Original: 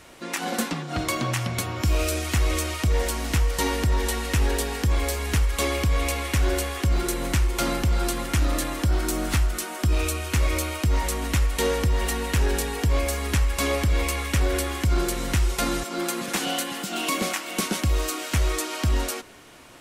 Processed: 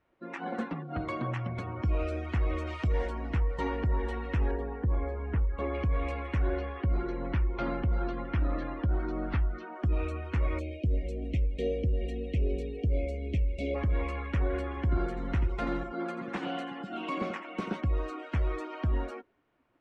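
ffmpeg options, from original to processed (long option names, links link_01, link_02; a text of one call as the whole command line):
ffmpeg -i in.wav -filter_complex "[0:a]asplit=3[link_01][link_02][link_03];[link_01]afade=type=out:start_time=2.66:duration=0.02[link_04];[link_02]highshelf=frequency=3000:gain=7.5,afade=type=in:start_time=2.66:duration=0.02,afade=type=out:start_time=3.06:duration=0.02[link_05];[link_03]afade=type=in:start_time=3.06:duration=0.02[link_06];[link_04][link_05][link_06]amix=inputs=3:normalize=0,asettb=1/sr,asplit=3[link_07][link_08][link_09];[link_07]atrim=end=4.514[link_10];[link_08]atrim=start=4.51:end=5.74,asetpts=PTS-STARTPTS,afade=type=in:duration=0.004:curve=qsin,afade=type=out:start_time=1.226:duration=0.004:curve=qsin,highshelf=frequency=2600:gain=-10.5[link_11];[link_09]atrim=start=5.736[link_12];[link_10][link_11]acrossfade=duration=0.004:curve1=hsin:curve2=qsin[link_13];[link_13][link_12]acrossfade=duration=0.004:curve1=qsin:curve2=hsin,asettb=1/sr,asplit=3[link_14][link_15][link_16];[link_14]atrim=end=6.484[link_17];[link_15]atrim=start=6.48:end=9.76,asetpts=PTS-STARTPTS,afade=type=in:duration=0.004:curve=qsin,afade=type=out:start_time=3.276:duration=0.004:curve=qsin,lowpass=frequency=5700:width=0.5412,lowpass=frequency=5700:width=1.3066[link_18];[link_16]atrim=start=9.756[link_19];[link_17][link_18]acrossfade=duration=0.004:curve1=hsin:curve2=qsin[link_20];[link_20][link_19]acrossfade=duration=0.004:curve1=qsin:curve2=hsin,asplit=3[link_21][link_22][link_23];[link_21]afade=type=out:start_time=10.59:duration=0.02[link_24];[link_22]asuperstop=centerf=1200:order=8:qfactor=0.83,afade=type=in:start_time=10.59:duration=0.02,afade=type=out:start_time=13.74:duration=0.02[link_25];[link_23]afade=type=in:start_time=13.74:duration=0.02[link_26];[link_24][link_25][link_26]amix=inputs=3:normalize=0,asettb=1/sr,asplit=3[link_27][link_28][link_29];[link_27]atrim=end=14.684[link_30];[link_28]atrim=start=14.68:end=17.76,asetpts=PTS-STARTPTS,afade=type=in:duration=0.004:curve=qsin,afade=type=out:start_time=3.076:duration=0.004:curve=qsin,aecho=1:1:87:0.398,atrim=end_sample=135828[link_31];[link_29]atrim=start=17.756[link_32];[link_30][link_31]acrossfade=duration=0.004:curve1=hsin:curve2=qsin[link_33];[link_33][link_32]acrossfade=duration=0.004:curve1=qsin:curve2=hsin,afftdn=noise_reduction=18:noise_floor=-34,lowpass=1900,volume=-6dB" out.wav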